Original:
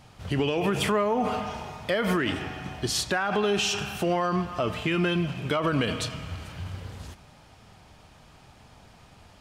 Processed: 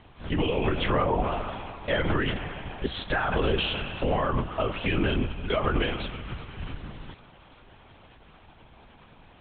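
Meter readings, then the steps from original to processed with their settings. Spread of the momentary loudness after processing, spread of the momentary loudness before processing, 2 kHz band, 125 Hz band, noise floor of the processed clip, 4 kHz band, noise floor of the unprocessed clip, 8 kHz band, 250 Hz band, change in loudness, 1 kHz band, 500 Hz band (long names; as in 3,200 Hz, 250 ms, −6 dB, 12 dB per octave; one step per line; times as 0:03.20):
14 LU, 13 LU, −0.5 dB, +0.5 dB, −54 dBFS, −2.0 dB, −54 dBFS, below −40 dB, −2.0 dB, −1.0 dB, −0.5 dB, −1.0 dB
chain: feedback echo with a high-pass in the loop 380 ms, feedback 69%, level −23 dB
linear-prediction vocoder at 8 kHz whisper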